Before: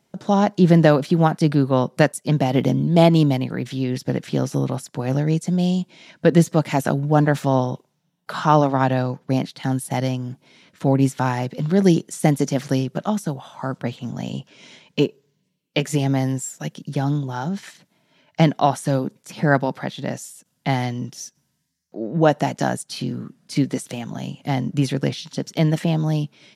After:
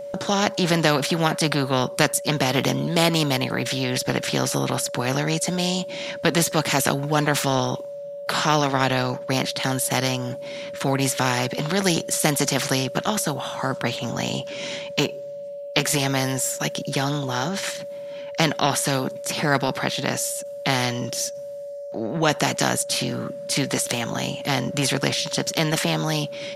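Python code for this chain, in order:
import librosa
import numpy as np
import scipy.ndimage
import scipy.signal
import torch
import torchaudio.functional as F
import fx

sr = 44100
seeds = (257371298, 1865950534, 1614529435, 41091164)

y = x + 10.0 ** (-32.0 / 20.0) * np.sin(2.0 * np.pi * 570.0 * np.arange(len(x)) / sr)
y = fx.spectral_comp(y, sr, ratio=2.0)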